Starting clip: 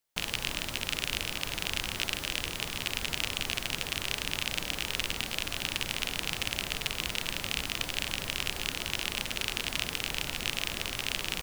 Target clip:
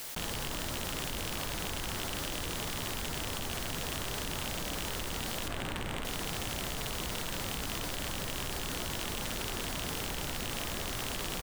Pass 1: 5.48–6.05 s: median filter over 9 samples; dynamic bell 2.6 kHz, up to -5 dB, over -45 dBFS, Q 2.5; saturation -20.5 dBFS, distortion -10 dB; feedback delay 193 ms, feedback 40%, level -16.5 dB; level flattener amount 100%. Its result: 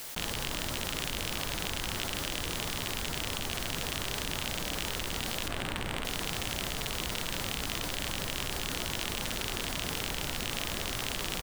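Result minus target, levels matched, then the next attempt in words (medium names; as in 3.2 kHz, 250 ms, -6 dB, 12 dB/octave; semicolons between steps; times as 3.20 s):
saturation: distortion -5 dB
5.48–6.05 s: median filter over 9 samples; dynamic bell 2.6 kHz, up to -5 dB, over -45 dBFS, Q 2.5; saturation -28.5 dBFS, distortion -5 dB; feedback delay 193 ms, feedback 40%, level -16.5 dB; level flattener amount 100%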